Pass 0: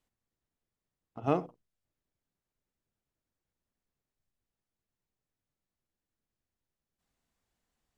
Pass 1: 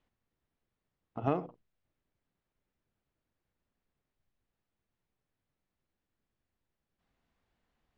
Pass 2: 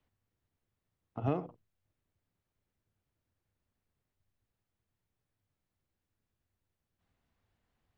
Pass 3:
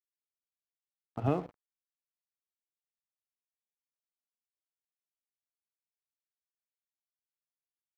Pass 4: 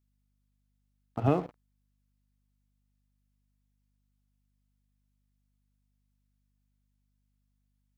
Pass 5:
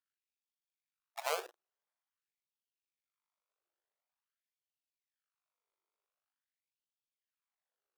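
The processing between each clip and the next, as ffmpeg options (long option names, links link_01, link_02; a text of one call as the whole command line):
ffmpeg -i in.wav -af "lowpass=3300,acompressor=threshold=-31dB:ratio=4,volume=4.5dB" out.wav
ffmpeg -i in.wav -filter_complex "[0:a]equalizer=frequency=95:width=2:gain=9.5,acrossover=split=120|680|1900[link_01][link_02][link_03][link_04];[link_03]alimiter=level_in=9dB:limit=-24dB:level=0:latency=1,volume=-9dB[link_05];[link_01][link_02][link_05][link_04]amix=inputs=4:normalize=0,volume=-1.5dB" out.wav
ffmpeg -i in.wav -af "aeval=exprs='sgn(val(0))*max(abs(val(0))-0.00211,0)':channel_layout=same,volume=3dB" out.wav
ffmpeg -i in.wav -af "aeval=exprs='val(0)+0.000126*(sin(2*PI*50*n/s)+sin(2*PI*2*50*n/s)/2+sin(2*PI*3*50*n/s)/3+sin(2*PI*4*50*n/s)/4+sin(2*PI*5*50*n/s)/5)':channel_layout=same,volume=4dB" out.wav
ffmpeg -i in.wav -af "acrusher=samples=26:mix=1:aa=0.000001:lfo=1:lforange=26:lforate=0.39,afftfilt=real='re*gte(b*sr/1024,320*pow(2600/320,0.5+0.5*sin(2*PI*0.47*pts/sr)))':imag='im*gte(b*sr/1024,320*pow(2600/320,0.5+0.5*sin(2*PI*0.47*pts/sr)))':win_size=1024:overlap=0.75,volume=-5.5dB" out.wav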